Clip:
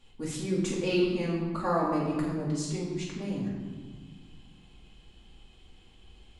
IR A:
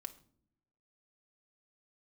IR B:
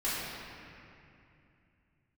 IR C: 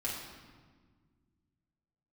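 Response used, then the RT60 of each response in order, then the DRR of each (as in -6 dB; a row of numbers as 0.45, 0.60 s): C; not exponential, 2.6 s, 1.6 s; 5.5, -11.5, -6.0 dB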